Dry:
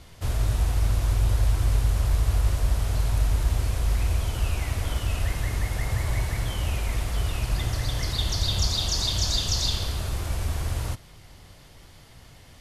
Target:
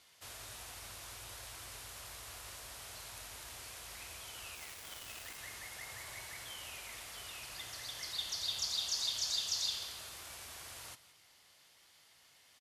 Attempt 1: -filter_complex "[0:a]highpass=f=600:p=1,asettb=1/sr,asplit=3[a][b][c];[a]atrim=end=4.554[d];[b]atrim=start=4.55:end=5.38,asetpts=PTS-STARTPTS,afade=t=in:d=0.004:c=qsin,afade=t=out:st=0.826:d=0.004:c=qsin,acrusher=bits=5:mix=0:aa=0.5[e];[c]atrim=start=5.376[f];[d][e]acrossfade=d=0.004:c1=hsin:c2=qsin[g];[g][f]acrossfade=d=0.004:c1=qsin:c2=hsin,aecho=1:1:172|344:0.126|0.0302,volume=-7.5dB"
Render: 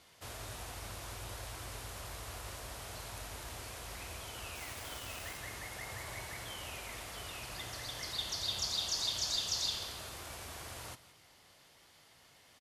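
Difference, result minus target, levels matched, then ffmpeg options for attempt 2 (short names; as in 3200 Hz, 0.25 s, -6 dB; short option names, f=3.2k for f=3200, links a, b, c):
500 Hz band +7.0 dB
-filter_complex "[0:a]highpass=f=2k:p=1,asettb=1/sr,asplit=3[a][b][c];[a]atrim=end=4.554[d];[b]atrim=start=4.55:end=5.38,asetpts=PTS-STARTPTS,afade=t=in:d=0.004:c=qsin,afade=t=out:st=0.826:d=0.004:c=qsin,acrusher=bits=5:mix=0:aa=0.5[e];[c]atrim=start=5.376[f];[d][e]acrossfade=d=0.004:c1=hsin:c2=qsin[g];[g][f]acrossfade=d=0.004:c1=qsin:c2=hsin,aecho=1:1:172|344:0.126|0.0302,volume=-7.5dB"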